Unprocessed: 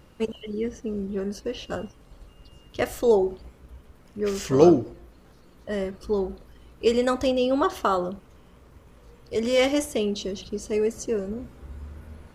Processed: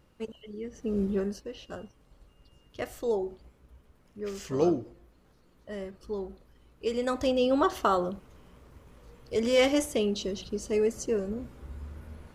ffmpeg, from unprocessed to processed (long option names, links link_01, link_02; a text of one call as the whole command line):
ffmpeg -i in.wav -af "volume=10.5dB,afade=type=in:start_time=0.72:duration=0.31:silence=0.223872,afade=type=out:start_time=1.03:duration=0.41:silence=0.237137,afade=type=in:start_time=6.9:duration=0.53:silence=0.421697" out.wav